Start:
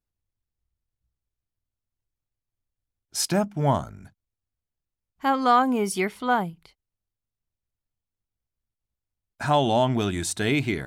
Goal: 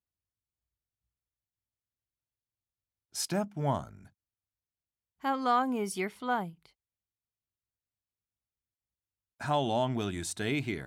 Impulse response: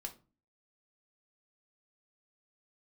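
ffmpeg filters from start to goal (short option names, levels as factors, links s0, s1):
-af "highpass=53,volume=0.398"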